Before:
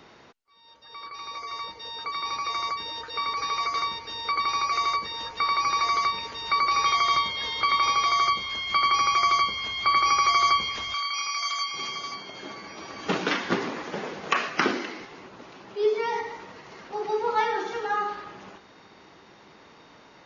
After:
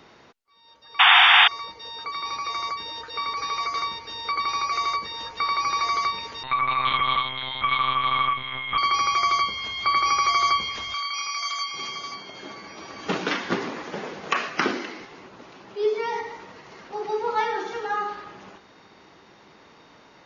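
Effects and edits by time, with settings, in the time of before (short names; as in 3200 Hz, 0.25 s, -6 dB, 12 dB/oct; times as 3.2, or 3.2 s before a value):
0.99–1.48 painted sound noise 700–3700 Hz -14 dBFS
6.43–8.78 monotone LPC vocoder at 8 kHz 130 Hz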